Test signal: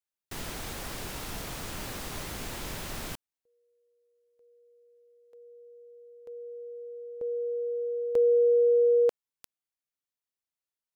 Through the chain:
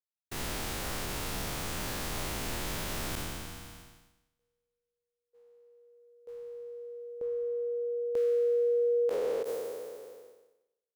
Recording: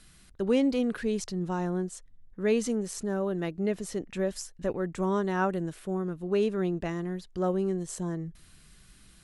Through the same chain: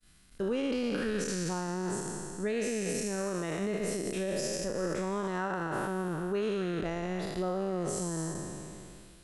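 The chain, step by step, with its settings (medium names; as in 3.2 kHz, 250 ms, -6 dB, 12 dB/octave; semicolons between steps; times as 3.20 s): spectral sustain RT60 2.55 s; expander -46 dBFS; peak limiter -22 dBFS; trim -1.5 dB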